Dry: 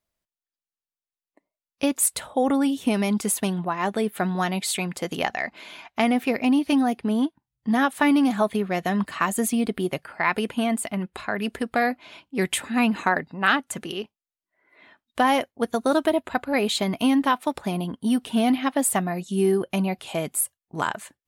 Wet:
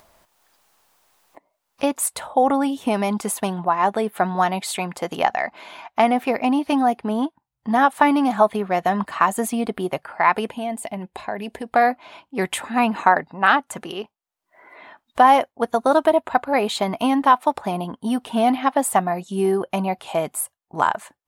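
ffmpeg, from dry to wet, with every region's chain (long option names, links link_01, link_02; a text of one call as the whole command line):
ffmpeg -i in.wav -filter_complex "[0:a]asettb=1/sr,asplit=3[link_01][link_02][link_03];[link_01]atrim=end=10.504[link_04];[link_02]atrim=start=10.5:end=11.74,asetpts=PTS-STARTPTS,afade=type=in:duration=0.004:curve=qsin,afade=type=out:start_time=1.236:duration=0.004:curve=qsin,equalizer=frequency=1300:width_type=o:width=0.5:gain=-13.5,acompressor=threshold=-27dB:ratio=2.5:attack=3.2:release=140:knee=1:detection=peak[link_05];[link_03]atrim=start=11.736[link_06];[link_04][link_05]acrossfade=duration=0.004:curve1=hsin:curve2=qsin[link_07];[link_07][link_06]acrossfade=duration=0.004:curve1=qsin:curve2=hsin,equalizer=frequency=860:width=0.94:gain=11.5,acompressor=mode=upward:threshold=-34dB:ratio=2.5,volume=-2dB" out.wav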